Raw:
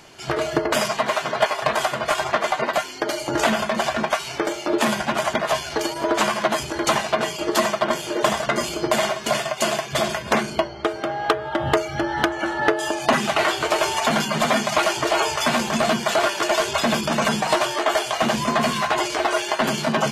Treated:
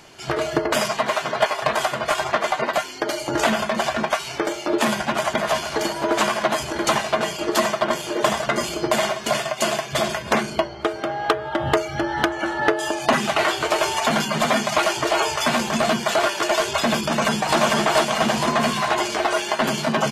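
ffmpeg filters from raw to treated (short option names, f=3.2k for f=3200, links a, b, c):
-filter_complex "[0:a]asplit=2[a][b];[b]afade=t=in:st=4.9:d=0.01,afade=t=out:st=5.45:d=0.01,aecho=0:1:470|940|1410|1880|2350|2820|3290|3760|4230|4700|5170|5640:0.354813|0.283851|0.227081|0.181664|0.145332|0.116265|0.0930122|0.0744098|0.0595278|0.0476222|0.0380978|0.0304782[c];[a][c]amix=inputs=2:normalize=0,asplit=2[d][e];[e]afade=t=in:st=17.03:d=0.01,afade=t=out:st=17.59:d=0.01,aecho=0:1:450|900|1350|1800|2250|2700|3150|3600:0.944061|0.519233|0.285578|0.157068|0.0863875|0.0475131|0.0261322|0.0143727[f];[d][f]amix=inputs=2:normalize=0"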